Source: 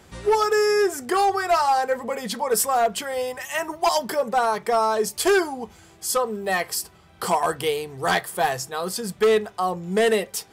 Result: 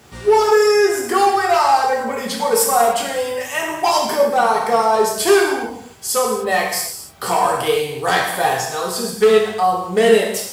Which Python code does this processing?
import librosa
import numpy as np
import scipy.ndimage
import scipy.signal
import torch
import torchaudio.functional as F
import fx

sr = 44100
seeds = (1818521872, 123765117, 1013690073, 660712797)

y = fx.dmg_noise_colour(x, sr, seeds[0], colour='pink', level_db=-58.0)
y = scipy.signal.sosfilt(scipy.signal.butter(2, 61.0, 'highpass', fs=sr, output='sos'), y)
y = fx.rev_gated(y, sr, seeds[1], gate_ms=320, shape='falling', drr_db=-2.5)
y = F.gain(torch.from_numpy(y), 1.5).numpy()